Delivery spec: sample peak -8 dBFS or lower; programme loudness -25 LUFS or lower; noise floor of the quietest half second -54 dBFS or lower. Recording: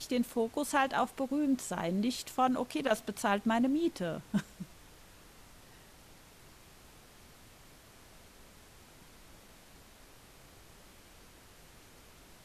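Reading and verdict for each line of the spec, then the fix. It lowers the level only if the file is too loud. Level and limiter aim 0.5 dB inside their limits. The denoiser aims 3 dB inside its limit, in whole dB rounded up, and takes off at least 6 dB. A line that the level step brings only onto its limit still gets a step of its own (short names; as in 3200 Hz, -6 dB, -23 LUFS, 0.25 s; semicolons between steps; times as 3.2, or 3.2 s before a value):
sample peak -16.5 dBFS: OK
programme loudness -32.5 LUFS: OK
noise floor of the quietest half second -57 dBFS: OK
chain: none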